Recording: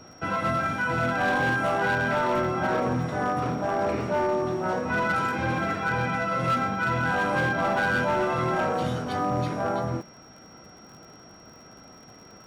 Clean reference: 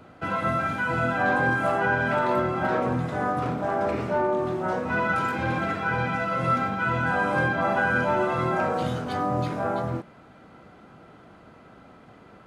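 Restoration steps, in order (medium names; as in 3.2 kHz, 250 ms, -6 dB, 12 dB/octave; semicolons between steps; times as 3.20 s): clip repair -19.5 dBFS; de-click; band-stop 5.6 kHz, Q 30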